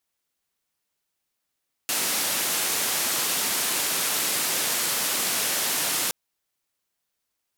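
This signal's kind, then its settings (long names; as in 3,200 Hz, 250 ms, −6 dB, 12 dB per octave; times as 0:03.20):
band-limited noise 180–14,000 Hz, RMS −25.5 dBFS 4.22 s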